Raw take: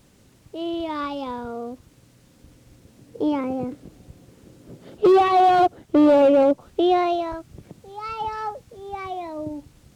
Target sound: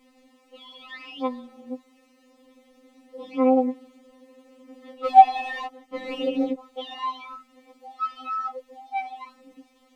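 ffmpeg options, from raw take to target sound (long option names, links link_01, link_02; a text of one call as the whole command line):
ffmpeg -i in.wav -af "asuperstop=centerf=1500:order=4:qfactor=5.9,bass=frequency=250:gain=-11,treble=frequency=4000:gain=-12,afftfilt=real='re*3.46*eq(mod(b,12),0)':imag='im*3.46*eq(mod(b,12),0)':win_size=2048:overlap=0.75,volume=4dB" out.wav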